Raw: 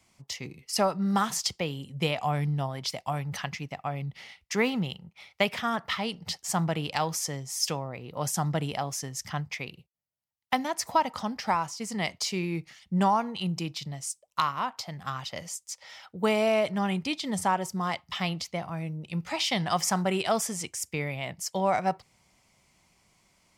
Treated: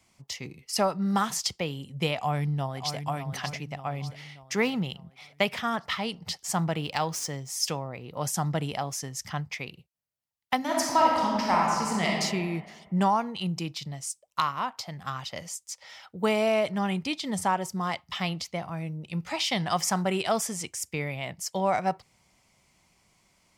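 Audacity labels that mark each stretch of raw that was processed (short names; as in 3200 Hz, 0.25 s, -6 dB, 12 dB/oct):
2.160000	2.980000	echo throw 0.59 s, feedback 50%, level -8.5 dB
6.660000	7.500000	median filter over 3 samples
10.580000	12.180000	reverb throw, RT60 1.7 s, DRR -3 dB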